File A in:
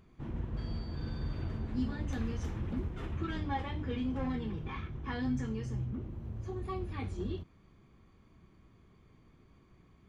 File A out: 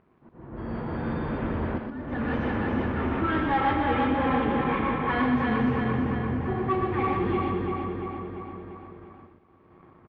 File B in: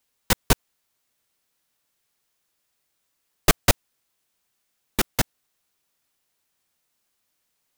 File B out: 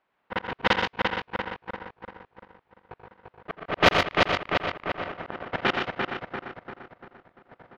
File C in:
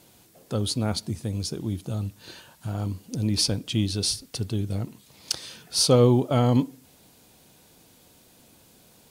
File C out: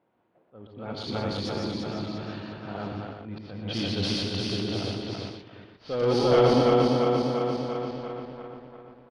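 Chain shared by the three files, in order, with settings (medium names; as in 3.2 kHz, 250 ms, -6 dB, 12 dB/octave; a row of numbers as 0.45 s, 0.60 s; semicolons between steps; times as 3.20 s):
backward echo that repeats 172 ms, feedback 80%, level -3 dB; high-pass 560 Hz 6 dB/octave; dynamic bell 3 kHz, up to +3 dB, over -43 dBFS, Q 3.9; waveshaping leveller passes 2; slow attack 554 ms; added noise blue -65 dBFS; level-controlled noise filter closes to 1.3 kHz, open at -20 dBFS; distance through air 290 m; multi-tap echo 85/122/144 ms -12/-5.5/-15.5 dB; normalise loudness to -27 LUFS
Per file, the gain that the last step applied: +9.5 dB, +12.5 dB, -3.0 dB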